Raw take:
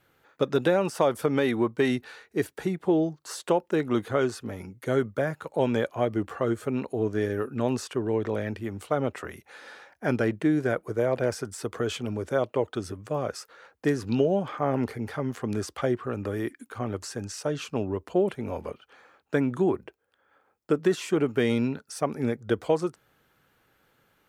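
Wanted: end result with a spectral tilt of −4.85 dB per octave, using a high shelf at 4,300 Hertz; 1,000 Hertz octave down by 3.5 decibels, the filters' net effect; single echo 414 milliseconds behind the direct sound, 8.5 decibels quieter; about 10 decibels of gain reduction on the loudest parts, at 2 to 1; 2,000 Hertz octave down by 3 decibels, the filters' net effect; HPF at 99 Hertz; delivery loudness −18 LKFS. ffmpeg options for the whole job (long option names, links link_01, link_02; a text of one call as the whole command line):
ffmpeg -i in.wav -af "highpass=99,equalizer=frequency=1000:width_type=o:gain=-4.5,equalizer=frequency=2000:width_type=o:gain=-4,highshelf=frequency=4300:gain=9,acompressor=threshold=-38dB:ratio=2,aecho=1:1:414:0.376,volume=18.5dB" out.wav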